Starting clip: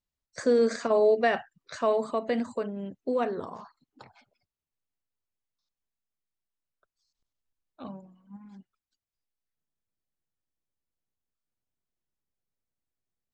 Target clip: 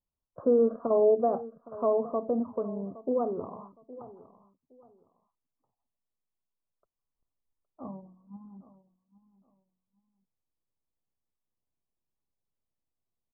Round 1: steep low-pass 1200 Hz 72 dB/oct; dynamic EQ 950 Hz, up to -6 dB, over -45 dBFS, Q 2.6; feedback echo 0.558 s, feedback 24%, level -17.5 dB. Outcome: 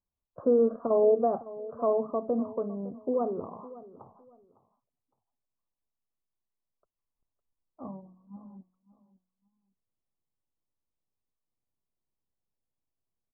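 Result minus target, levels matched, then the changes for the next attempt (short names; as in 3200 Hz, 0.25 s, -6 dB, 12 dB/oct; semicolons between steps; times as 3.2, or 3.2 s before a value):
echo 0.257 s early
change: feedback echo 0.815 s, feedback 24%, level -17.5 dB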